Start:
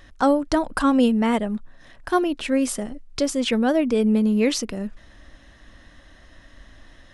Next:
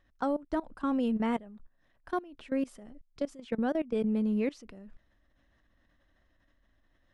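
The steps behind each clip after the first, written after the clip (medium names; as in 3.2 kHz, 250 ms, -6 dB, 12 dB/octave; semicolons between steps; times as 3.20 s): level held to a coarse grid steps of 20 dB; treble shelf 4.1 kHz -10.5 dB; trim -8 dB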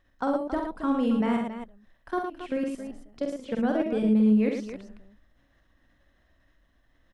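multi-tap echo 47/65/112/274 ms -5/-9.5/-6/-10.5 dB; trim +2 dB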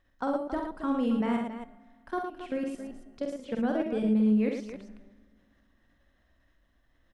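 reverberation RT60 2.1 s, pre-delay 4 ms, DRR 17.5 dB; trim -3 dB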